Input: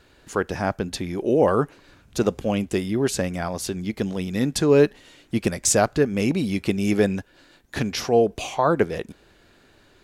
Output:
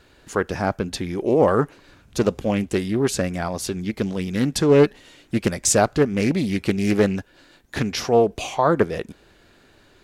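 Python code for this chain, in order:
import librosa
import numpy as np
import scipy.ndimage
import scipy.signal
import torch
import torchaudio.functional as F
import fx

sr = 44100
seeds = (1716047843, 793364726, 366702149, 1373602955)

y = fx.doppler_dist(x, sr, depth_ms=0.24)
y = y * 10.0 ** (1.5 / 20.0)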